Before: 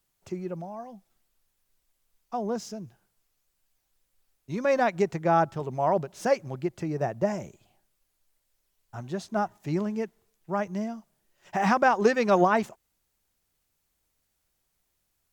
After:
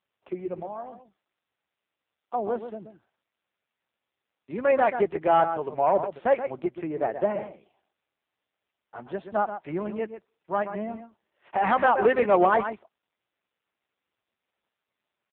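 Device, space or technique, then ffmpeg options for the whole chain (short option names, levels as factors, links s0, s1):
telephone: -filter_complex "[0:a]asettb=1/sr,asplit=3[s0][s1][s2];[s0]atrim=end=9.034[s3];[s1]atrim=start=9.03:end=10.56,asetpts=PTS-STARTPTS,afade=t=in:d=0.004:c=qsin,afade=t=out:st=1.526:d=0.004:c=qsin,equalizer=f=290:t=o:w=0.58:g=-5[s4];[s2]atrim=start=10.556[s5];[s3][s4]acrossfade=d=0.004:c1=hsin:c2=qsin[s6];[s6][s5]acrossfade=d=0.004:c1=qsin:c2=hsin,highpass=310,lowpass=3300,aecho=1:1:128:0.299,asoftclip=type=tanh:threshold=0.188,volume=1.68" -ar 8000 -c:a libopencore_amrnb -b:a 5900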